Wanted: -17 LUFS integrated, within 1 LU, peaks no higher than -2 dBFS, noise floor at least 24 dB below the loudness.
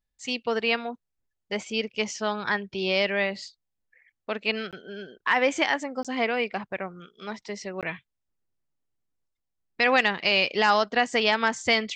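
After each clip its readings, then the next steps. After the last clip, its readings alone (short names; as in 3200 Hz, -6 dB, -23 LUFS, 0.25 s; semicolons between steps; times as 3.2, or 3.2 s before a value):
dropouts 3; longest dropout 17 ms; loudness -25.5 LUFS; peak -8.0 dBFS; loudness target -17.0 LUFS
-> interpolate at 4.71/6.03/7.81, 17 ms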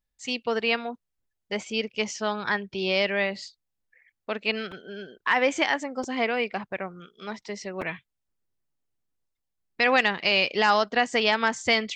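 dropouts 0; loudness -25.5 LUFS; peak -8.0 dBFS; loudness target -17.0 LUFS
-> gain +8.5 dB; limiter -2 dBFS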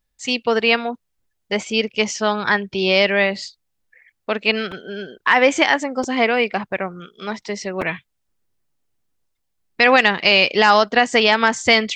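loudness -17.5 LUFS; peak -2.0 dBFS; noise floor -73 dBFS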